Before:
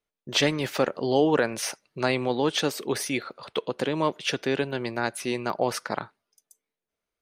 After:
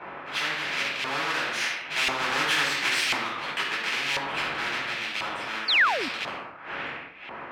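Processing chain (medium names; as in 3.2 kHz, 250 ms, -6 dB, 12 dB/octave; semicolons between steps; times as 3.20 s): square wave that keeps the level; Doppler pass-by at 2.52 s, 25 m/s, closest 9.1 m; wind noise 480 Hz -41 dBFS; compression 1.5:1, threshold -38 dBFS, peak gain reduction 8 dB; peaking EQ 2.6 kHz +14 dB 1.6 oct; speed mistake 25 fps video run at 24 fps; bass shelf 360 Hz -6 dB; simulated room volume 890 m³, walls furnished, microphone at 8.5 m; painted sound fall, 5.68–6.09 s, 230–4700 Hz -7 dBFS; LFO band-pass saw up 0.96 Hz 940–2700 Hz; spectrum-flattening compressor 2:1; trim -8 dB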